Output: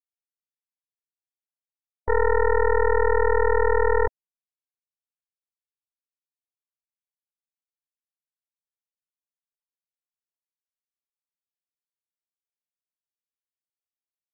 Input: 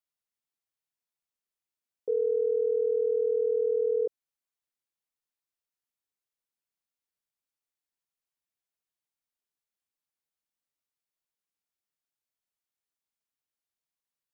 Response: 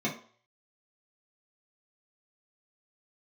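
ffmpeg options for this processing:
-af "acontrast=51,afftfilt=real='re*gte(hypot(re,im),0.0224)':imag='im*gte(hypot(re,im),0.0224)':win_size=1024:overlap=0.75,aeval=exprs='0.2*(cos(1*acos(clip(val(0)/0.2,-1,1)))-cos(1*PI/2))+0.0501*(cos(3*acos(clip(val(0)/0.2,-1,1)))-cos(3*PI/2))+0.0708*(cos(4*acos(clip(val(0)/0.2,-1,1)))-cos(4*PI/2))+0.00316*(cos(5*acos(clip(val(0)/0.2,-1,1)))-cos(5*PI/2))':channel_layout=same"

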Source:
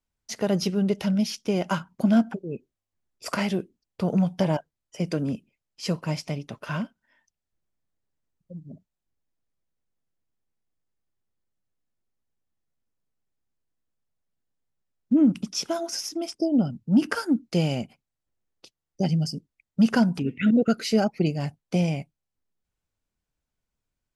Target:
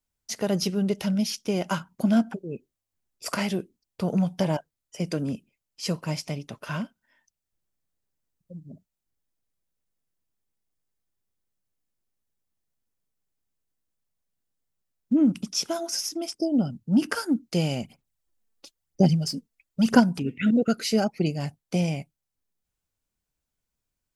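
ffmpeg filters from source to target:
ffmpeg -i in.wav -filter_complex "[0:a]highshelf=frequency=5900:gain=8,asplit=3[link_01][link_02][link_03];[link_01]afade=type=out:start_time=17.82:duration=0.02[link_04];[link_02]aphaser=in_gain=1:out_gain=1:delay=4.5:decay=0.61:speed=1:type=sinusoidal,afade=type=in:start_time=17.82:duration=0.02,afade=type=out:start_time=19.99:duration=0.02[link_05];[link_03]afade=type=in:start_time=19.99:duration=0.02[link_06];[link_04][link_05][link_06]amix=inputs=3:normalize=0,volume=-1.5dB" out.wav

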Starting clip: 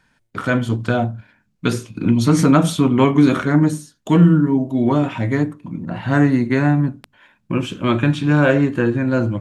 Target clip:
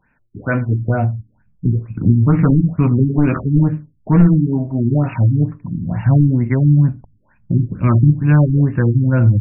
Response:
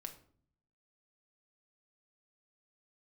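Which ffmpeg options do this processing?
-af "aeval=exprs='clip(val(0),-1,0.376)':channel_layout=same,asubboost=boost=11:cutoff=120,afftfilt=real='re*lt(b*sr/1024,360*pow(2900/360,0.5+0.5*sin(2*PI*2.2*pts/sr)))':imag='im*lt(b*sr/1024,360*pow(2900/360,0.5+0.5*sin(2*PI*2.2*pts/sr)))':win_size=1024:overlap=0.75"

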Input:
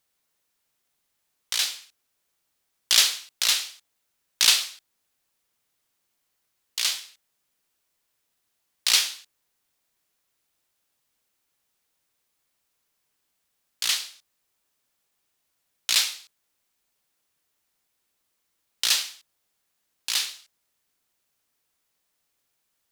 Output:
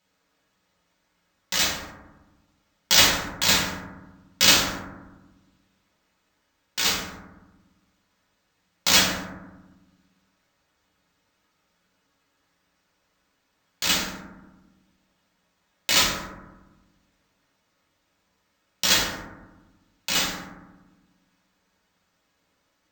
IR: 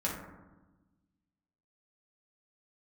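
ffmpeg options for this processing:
-filter_complex "[0:a]acrusher=samples=4:mix=1:aa=0.000001[link_01];[1:a]atrim=start_sample=2205[link_02];[link_01][link_02]afir=irnorm=-1:irlink=0"

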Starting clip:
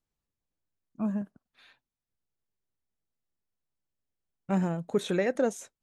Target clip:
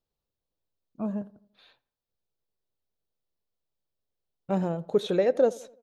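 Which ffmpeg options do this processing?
ffmpeg -i in.wav -filter_complex "[0:a]equalizer=frequency=250:width_type=o:width=1:gain=-3,equalizer=frequency=500:width_type=o:width=1:gain=7,equalizer=frequency=2000:width_type=o:width=1:gain=-7,equalizer=frequency=4000:width_type=o:width=1:gain=6,equalizer=frequency=8000:width_type=o:width=1:gain=-9,asplit=2[link_01][link_02];[link_02]adelay=85,lowpass=frequency=1900:poles=1,volume=-20.5dB,asplit=2[link_03][link_04];[link_04]adelay=85,lowpass=frequency=1900:poles=1,volume=0.48,asplit=2[link_05][link_06];[link_06]adelay=85,lowpass=frequency=1900:poles=1,volume=0.48,asplit=2[link_07][link_08];[link_08]adelay=85,lowpass=frequency=1900:poles=1,volume=0.48[link_09];[link_01][link_03][link_05][link_07][link_09]amix=inputs=5:normalize=0" out.wav

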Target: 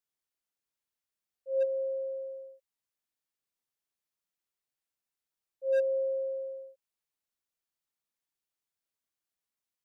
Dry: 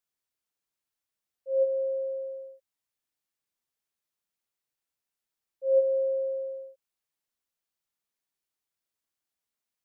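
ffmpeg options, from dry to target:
ffmpeg -i in.wav -af "volume=19dB,asoftclip=hard,volume=-19dB,volume=-3.5dB" out.wav

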